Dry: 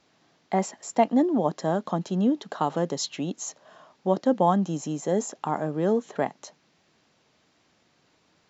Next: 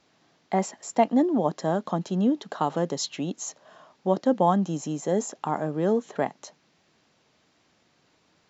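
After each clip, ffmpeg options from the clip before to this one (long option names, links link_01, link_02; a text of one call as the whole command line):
ffmpeg -i in.wav -af anull out.wav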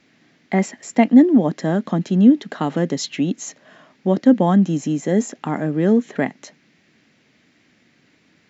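ffmpeg -i in.wav -af "equalizer=frequency=125:width_type=o:width=1:gain=4,equalizer=frequency=250:width_type=o:width=1:gain=10,equalizer=frequency=1000:width_type=o:width=1:gain=-6,equalizer=frequency=2000:width_type=o:width=1:gain=11,volume=2dB" out.wav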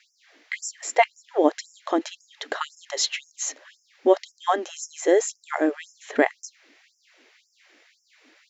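ffmpeg -i in.wav -af "afftfilt=real='re*gte(b*sr/1024,250*pow(5100/250,0.5+0.5*sin(2*PI*1.9*pts/sr)))':imag='im*gte(b*sr/1024,250*pow(5100/250,0.5+0.5*sin(2*PI*1.9*pts/sr)))':win_size=1024:overlap=0.75,volume=3.5dB" out.wav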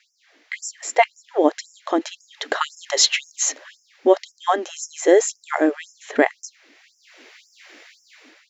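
ffmpeg -i in.wav -af "dynaudnorm=framelen=240:gausssize=5:maxgain=12dB,volume=-1dB" out.wav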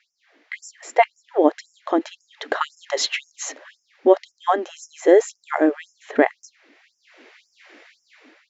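ffmpeg -i in.wav -af "lowpass=frequency=1900:poles=1,volume=1dB" out.wav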